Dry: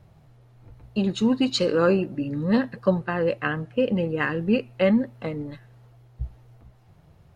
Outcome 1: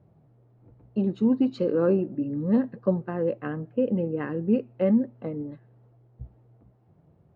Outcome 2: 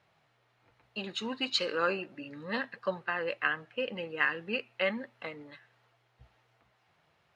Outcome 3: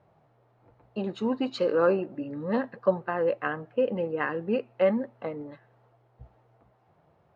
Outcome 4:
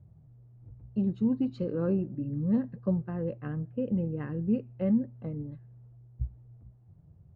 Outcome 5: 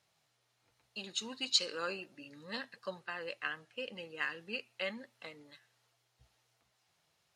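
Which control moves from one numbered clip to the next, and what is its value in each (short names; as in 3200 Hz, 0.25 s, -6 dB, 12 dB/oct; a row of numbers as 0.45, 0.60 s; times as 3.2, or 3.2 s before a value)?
band-pass, frequency: 290, 2300, 750, 100, 6200 Hz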